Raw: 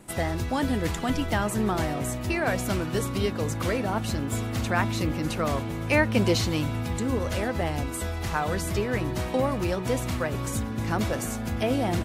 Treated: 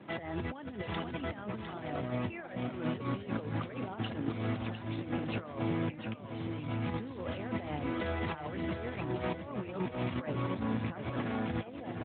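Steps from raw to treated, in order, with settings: HPF 68 Hz 24 dB/oct; low shelf 190 Hz -4.5 dB; negative-ratio compressor -33 dBFS, ratio -0.5; on a send: echo 0.704 s -7.5 dB; on the sum: gain -2.5 dB; AMR-NB 12.2 kbps 8000 Hz

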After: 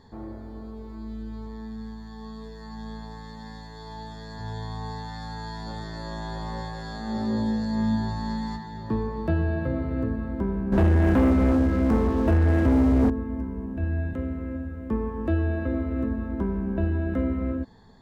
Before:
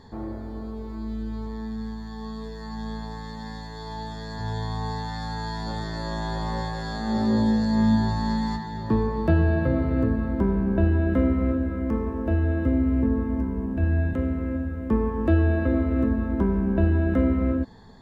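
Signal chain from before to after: 10.72–13.1 sample leveller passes 3; gain -4.5 dB

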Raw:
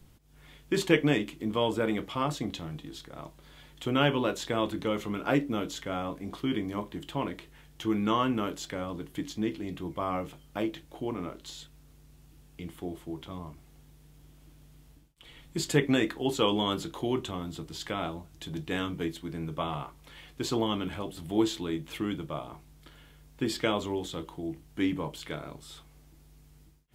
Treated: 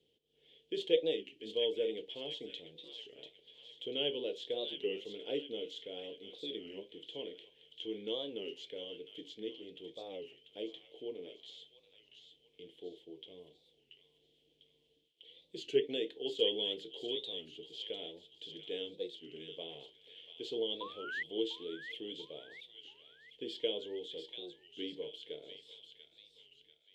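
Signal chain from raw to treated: painted sound rise, 20.81–21.23, 870–2100 Hz -16 dBFS; double band-pass 1200 Hz, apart 2.8 oct; thin delay 0.691 s, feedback 46%, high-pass 1500 Hz, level -6.5 dB; record warp 33 1/3 rpm, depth 160 cents

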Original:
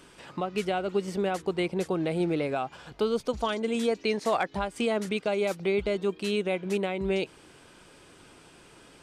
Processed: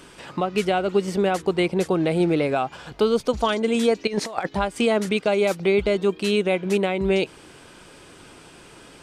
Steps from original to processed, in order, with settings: 4.07–4.49 negative-ratio compressor -32 dBFS, ratio -0.5; gain +7 dB

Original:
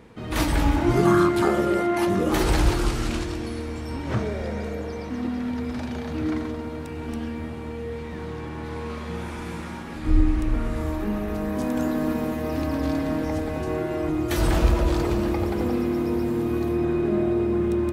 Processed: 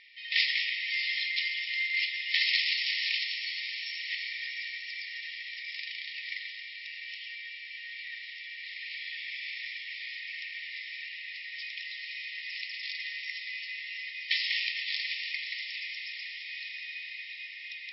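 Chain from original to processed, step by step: brick-wall FIR band-pass 1800–5500 Hz; diffused feedback echo 0.658 s, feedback 57%, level -9.5 dB; gain +7 dB

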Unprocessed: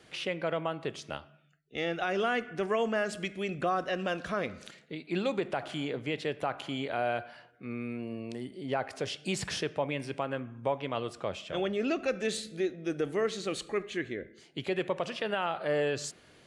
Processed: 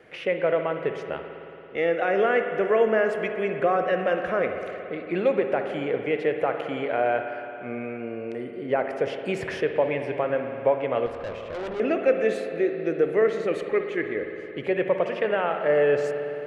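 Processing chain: graphic EQ 500/2000/4000/8000 Hz +11/+9/-9/-11 dB; spring tank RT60 3.3 s, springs 55 ms, chirp 35 ms, DRR 5.5 dB; 11.06–11.8 tube stage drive 29 dB, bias 0.6

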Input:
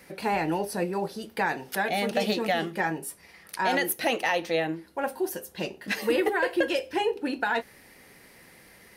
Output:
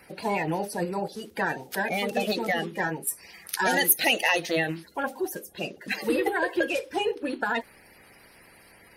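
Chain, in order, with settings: bin magnitudes rounded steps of 30 dB; 3.07–5.03 high shelf 2400 Hz +11 dB

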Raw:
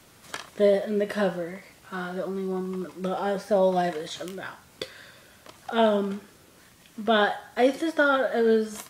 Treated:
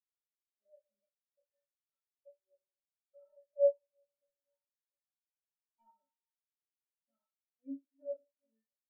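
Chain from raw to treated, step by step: 3.02–5.81 block floating point 3-bit; LPF 2500 Hz; de-hum 82.34 Hz, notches 34; AGC gain up to 15.5 dB; metallic resonator 270 Hz, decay 0.7 s, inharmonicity 0.03; step gate "xx...xxx." 153 bpm -60 dB; echo 0.339 s -17 dB; reverb, pre-delay 3 ms, DRR -0.5 dB; spectral expander 2.5:1; gain -8 dB

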